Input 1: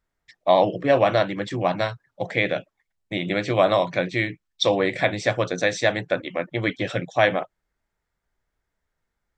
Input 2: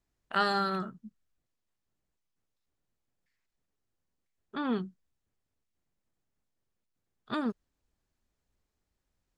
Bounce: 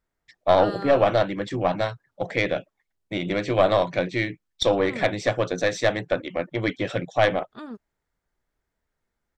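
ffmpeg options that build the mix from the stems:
-filter_complex "[0:a]aeval=exprs='(tanh(2.51*val(0)+0.55)-tanh(0.55))/2.51':c=same,volume=0dB[a];[1:a]adelay=250,volume=-8.5dB[b];[a][b]amix=inputs=2:normalize=0,equalizer=f=370:w=0.52:g=3"

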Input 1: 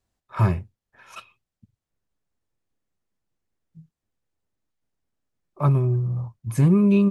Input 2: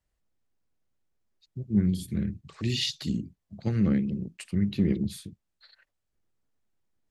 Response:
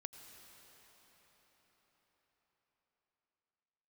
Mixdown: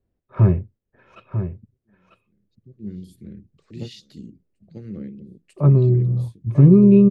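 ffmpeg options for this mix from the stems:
-filter_complex "[0:a]lowpass=2.4k,volume=-4.5dB,asplit=3[a][b][c];[b]volume=-9.5dB[d];[1:a]lowshelf=f=350:g=-8,adelay=150,volume=-9dB,asplit=2[e][f];[f]volume=-5dB[g];[c]apad=whole_len=319924[h];[e][h]sidechaingate=range=-34dB:threshold=-54dB:ratio=16:detection=peak[i];[d][g]amix=inputs=2:normalize=0,aecho=0:1:945:1[j];[a][i][j]amix=inputs=3:normalize=0,lowshelf=f=630:t=q:w=1.5:g=9.5"

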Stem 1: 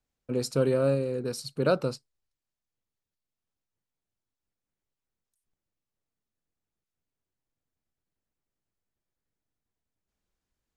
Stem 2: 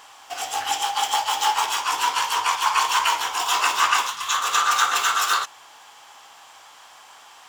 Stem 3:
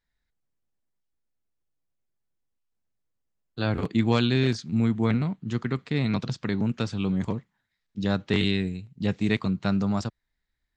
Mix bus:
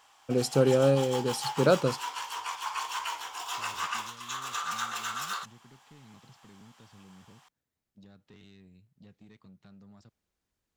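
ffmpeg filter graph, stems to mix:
-filter_complex "[0:a]highpass=47,volume=2dB[a];[1:a]volume=-14dB[b];[2:a]acompressor=threshold=-29dB:ratio=6,asoftclip=type=tanh:threshold=-27dB,volume=-19.5dB[c];[a][b][c]amix=inputs=3:normalize=0"

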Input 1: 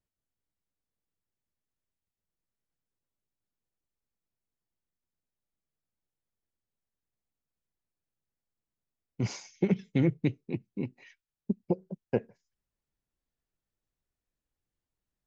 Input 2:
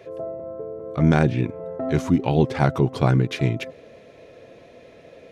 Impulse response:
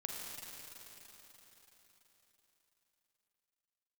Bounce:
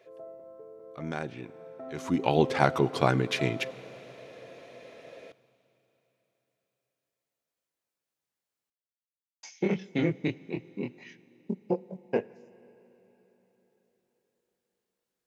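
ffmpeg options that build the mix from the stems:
-filter_complex "[0:a]acontrast=77,flanger=delay=19:depth=6.4:speed=0.15,volume=1dB,asplit=3[a][b][c];[a]atrim=end=8.7,asetpts=PTS-STARTPTS,afade=t=out:st=8.696:d=0.004:c=hsin[d];[b]atrim=start=8.7:end=9.43,asetpts=PTS-STARTPTS,volume=0[e];[c]atrim=start=9.43,asetpts=PTS-STARTPTS,afade=t=in:d=0.004:c=hsin[f];[d][e][f]concat=n=3:v=0:a=1,asplit=2[g][h];[h]volume=-17.5dB[i];[1:a]afade=t=in:st=1.95:d=0.28:silence=0.237137,asplit=2[j][k];[k]volume=-16dB[l];[2:a]atrim=start_sample=2205[m];[i][l]amix=inputs=2:normalize=0[n];[n][m]afir=irnorm=-1:irlink=0[o];[g][j][o]amix=inputs=3:normalize=0,highpass=f=470:p=1"

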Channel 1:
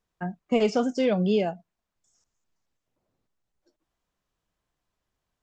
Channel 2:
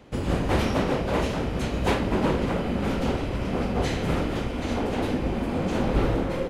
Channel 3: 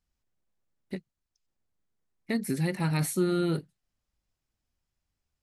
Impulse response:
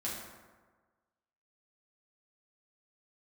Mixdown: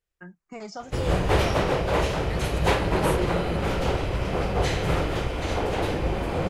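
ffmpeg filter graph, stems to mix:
-filter_complex "[0:a]acontrast=70,asplit=2[a][b];[b]afreqshift=-0.61[c];[a][c]amix=inputs=2:normalize=1,volume=-11dB[d];[1:a]adelay=800,volume=3dB[e];[2:a]volume=-5dB[f];[d][e][f]amix=inputs=3:normalize=0,equalizer=f=240:w=2.9:g=-14"

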